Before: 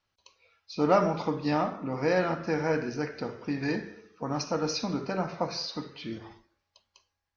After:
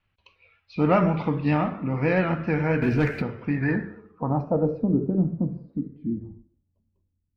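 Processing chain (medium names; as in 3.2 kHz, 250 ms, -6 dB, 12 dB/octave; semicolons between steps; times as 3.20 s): low-pass sweep 2.6 kHz -> 260 Hz, 3.36–5.35 s; 2.82–3.22 s: waveshaping leveller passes 2; tone controls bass +12 dB, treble -3 dB; vibrato 7.4 Hz 39 cents; 5.73–6.23 s: graphic EQ 125/1000/2000/4000 Hz -6/-12/+11/+6 dB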